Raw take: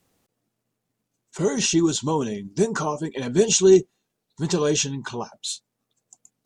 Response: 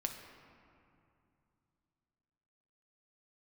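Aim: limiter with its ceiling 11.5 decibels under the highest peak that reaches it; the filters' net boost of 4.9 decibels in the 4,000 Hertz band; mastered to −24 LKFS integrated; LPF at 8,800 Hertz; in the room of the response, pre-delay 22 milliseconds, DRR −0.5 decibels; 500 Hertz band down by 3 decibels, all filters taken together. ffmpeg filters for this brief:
-filter_complex "[0:a]lowpass=8800,equalizer=frequency=500:width_type=o:gain=-4.5,equalizer=frequency=4000:width_type=o:gain=6.5,alimiter=limit=-15.5dB:level=0:latency=1,asplit=2[link_01][link_02];[1:a]atrim=start_sample=2205,adelay=22[link_03];[link_02][link_03]afir=irnorm=-1:irlink=0,volume=0dB[link_04];[link_01][link_04]amix=inputs=2:normalize=0,volume=-0.5dB"

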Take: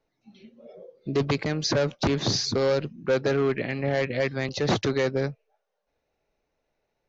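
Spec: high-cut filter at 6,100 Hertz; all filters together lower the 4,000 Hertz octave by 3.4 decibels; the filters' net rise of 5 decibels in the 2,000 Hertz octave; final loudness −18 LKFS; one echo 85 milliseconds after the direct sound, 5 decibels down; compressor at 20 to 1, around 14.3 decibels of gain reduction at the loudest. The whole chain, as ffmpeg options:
ffmpeg -i in.wav -af "lowpass=6100,equalizer=frequency=2000:width_type=o:gain=7,equalizer=frequency=4000:width_type=o:gain=-4.5,acompressor=threshold=-33dB:ratio=20,aecho=1:1:85:0.562,volume=19dB" out.wav

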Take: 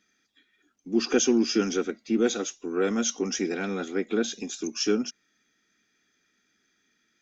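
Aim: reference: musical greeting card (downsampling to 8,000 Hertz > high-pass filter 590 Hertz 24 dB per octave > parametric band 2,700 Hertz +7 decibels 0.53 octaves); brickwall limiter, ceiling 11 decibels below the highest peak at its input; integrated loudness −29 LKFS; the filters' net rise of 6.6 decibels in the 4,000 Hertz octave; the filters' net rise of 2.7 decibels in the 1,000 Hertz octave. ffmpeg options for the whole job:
ffmpeg -i in.wav -af "equalizer=frequency=1000:width_type=o:gain=3.5,equalizer=frequency=4000:width_type=o:gain=6.5,alimiter=limit=-19.5dB:level=0:latency=1,aresample=8000,aresample=44100,highpass=frequency=590:width=0.5412,highpass=frequency=590:width=1.3066,equalizer=frequency=2700:width_type=o:width=0.53:gain=7,volume=6dB" out.wav

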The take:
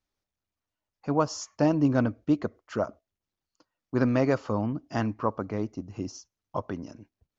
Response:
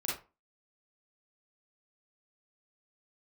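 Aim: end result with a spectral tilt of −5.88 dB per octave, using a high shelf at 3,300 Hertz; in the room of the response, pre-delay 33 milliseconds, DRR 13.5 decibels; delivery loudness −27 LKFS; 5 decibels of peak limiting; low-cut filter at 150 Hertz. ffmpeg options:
-filter_complex "[0:a]highpass=150,highshelf=frequency=3300:gain=3,alimiter=limit=-15.5dB:level=0:latency=1,asplit=2[link_01][link_02];[1:a]atrim=start_sample=2205,adelay=33[link_03];[link_02][link_03]afir=irnorm=-1:irlink=0,volume=-17.5dB[link_04];[link_01][link_04]amix=inputs=2:normalize=0,volume=3.5dB"

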